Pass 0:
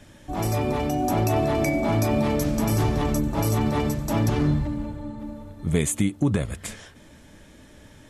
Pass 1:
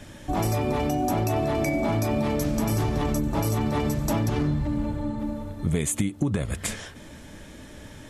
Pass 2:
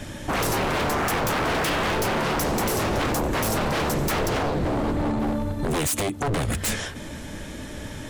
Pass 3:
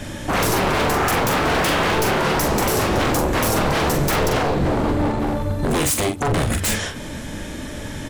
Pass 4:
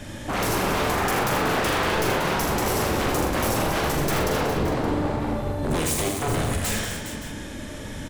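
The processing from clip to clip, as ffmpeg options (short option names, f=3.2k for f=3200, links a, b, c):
-af "acompressor=threshold=-27dB:ratio=6,volume=5.5dB"
-af "aeval=exprs='0.0447*(abs(mod(val(0)/0.0447+3,4)-2)-1)':c=same,volume=8dB"
-filter_complex "[0:a]asplit=2[a][b];[b]adelay=43,volume=-6dB[c];[a][c]amix=inputs=2:normalize=0,volume=4dB"
-af "aecho=1:1:80|186|254|292|411|571:0.562|0.355|0.282|0.126|0.299|0.158,volume=-6.5dB"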